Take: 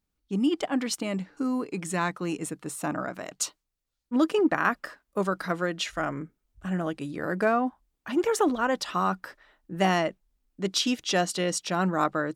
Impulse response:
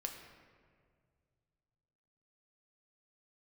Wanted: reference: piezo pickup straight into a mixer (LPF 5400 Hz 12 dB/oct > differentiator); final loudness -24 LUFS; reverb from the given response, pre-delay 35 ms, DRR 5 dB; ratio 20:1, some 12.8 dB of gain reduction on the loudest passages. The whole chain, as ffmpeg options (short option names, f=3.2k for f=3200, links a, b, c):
-filter_complex "[0:a]acompressor=threshold=-31dB:ratio=20,asplit=2[a][b];[1:a]atrim=start_sample=2205,adelay=35[c];[b][c]afir=irnorm=-1:irlink=0,volume=-4dB[d];[a][d]amix=inputs=2:normalize=0,lowpass=5.4k,aderivative,volume=24dB"